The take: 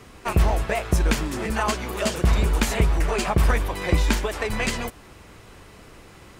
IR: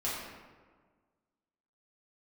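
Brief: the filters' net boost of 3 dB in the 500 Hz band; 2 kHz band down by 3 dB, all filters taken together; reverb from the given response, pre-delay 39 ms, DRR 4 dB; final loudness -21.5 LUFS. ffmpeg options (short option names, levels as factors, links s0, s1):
-filter_complex "[0:a]equalizer=f=500:t=o:g=4,equalizer=f=2000:t=o:g=-4,asplit=2[s0][s1];[1:a]atrim=start_sample=2205,adelay=39[s2];[s1][s2]afir=irnorm=-1:irlink=0,volume=0.316[s3];[s0][s3]amix=inputs=2:normalize=0,volume=1.06"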